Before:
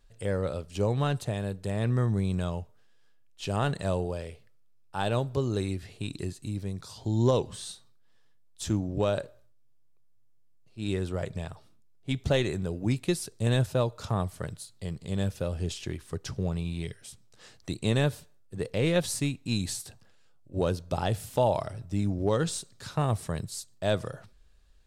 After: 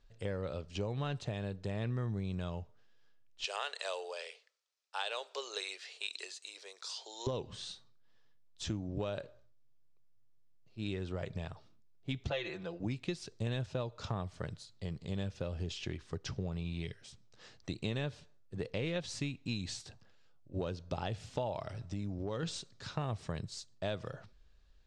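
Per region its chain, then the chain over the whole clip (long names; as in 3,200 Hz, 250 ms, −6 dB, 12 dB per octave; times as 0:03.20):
0:03.44–0:07.27: Chebyshev high-pass filter 440 Hz, order 4 + spectral tilt +4 dB per octave
0:12.30–0:12.80: three-way crossover with the lows and the highs turned down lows −14 dB, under 440 Hz, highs −21 dB, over 5,800 Hz + comb filter 5.9 ms, depth 81%
0:21.69–0:22.43: downward compressor 2 to 1, threshold −32 dBFS + one half of a high-frequency compander encoder only
whole clip: low-pass filter 6,400 Hz 24 dB per octave; dynamic equaliser 2,700 Hz, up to +4 dB, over −49 dBFS, Q 1.5; downward compressor 5 to 1, threshold −30 dBFS; level −3.5 dB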